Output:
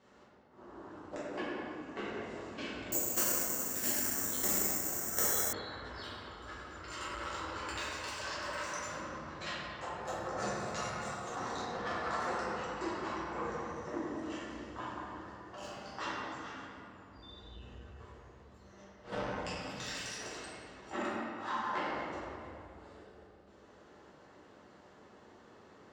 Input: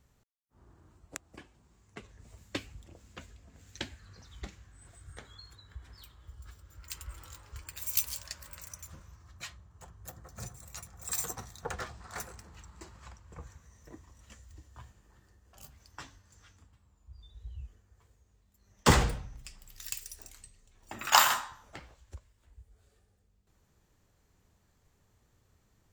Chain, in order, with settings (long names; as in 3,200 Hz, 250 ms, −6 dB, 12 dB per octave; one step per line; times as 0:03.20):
high-pass filter 400 Hz 12 dB per octave
spectral tilt −1.5 dB per octave
notch filter 2,400 Hz, Q 12
compressor whose output falls as the input rises −47 dBFS, ratio −0.5
high-frequency loss of the air 120 metres
convolution reverb RT60 2.6 s, pre-delay 5 ms, DRR −10 dB
0:02.92–0:05.53: bad sample-rate conversion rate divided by 6×, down filtered, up zero stuff
saturating transformer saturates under 2,800 Hz